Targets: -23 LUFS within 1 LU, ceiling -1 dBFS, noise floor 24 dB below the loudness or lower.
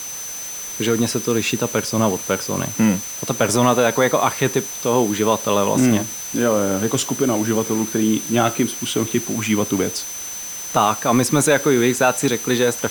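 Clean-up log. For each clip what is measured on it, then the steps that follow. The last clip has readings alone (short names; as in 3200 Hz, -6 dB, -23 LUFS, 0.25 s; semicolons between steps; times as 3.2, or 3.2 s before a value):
steady tone 6100 Hz; tone level -29 dBFS; noise floor -30 dBFS; noise floor target -43 dBFS; loudness -19.0 LUFS; peak -2.5 dBFS; loudness target -23.0 LUFS
-> notch 6100 Hz, Q 30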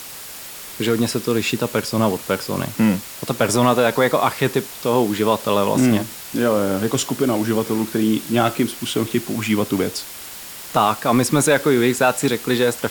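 steady tone none; noise floor -35 dBFS; noise floor target -44 dBFS
-> denoiser 9 dB, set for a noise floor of -35 dBFS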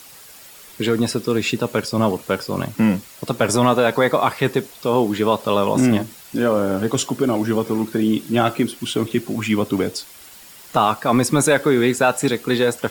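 noise floor -43 dBFS; noise floor target -44 dBFS
-> denoiser 6 dB, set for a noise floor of -43 dBFS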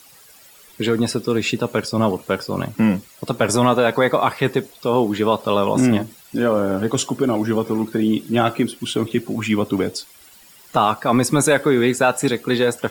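noise floor -48 dBFS; loudness -19.5 LUFS; peak -3.0 dBFS; loudness target -23.0 LUFS
-> gain -3.5 dB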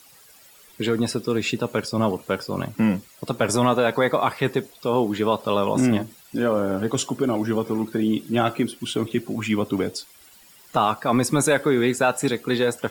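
loudness -23.0 LUFS; peak -6.5 dBFS; noise floor -51 dBFS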